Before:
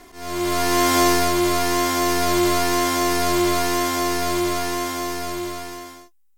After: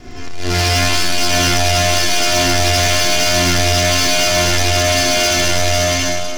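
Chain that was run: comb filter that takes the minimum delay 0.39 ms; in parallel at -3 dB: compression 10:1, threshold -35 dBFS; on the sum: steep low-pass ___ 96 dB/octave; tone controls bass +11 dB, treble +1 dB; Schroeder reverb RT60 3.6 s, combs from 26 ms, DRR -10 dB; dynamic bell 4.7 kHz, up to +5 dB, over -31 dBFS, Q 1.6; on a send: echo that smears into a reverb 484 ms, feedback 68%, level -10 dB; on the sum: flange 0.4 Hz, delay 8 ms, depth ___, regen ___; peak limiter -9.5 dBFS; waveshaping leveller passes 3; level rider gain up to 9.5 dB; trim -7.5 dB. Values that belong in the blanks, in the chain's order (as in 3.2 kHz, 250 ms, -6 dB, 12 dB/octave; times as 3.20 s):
7.2 kHz, 3.2 ms, -51%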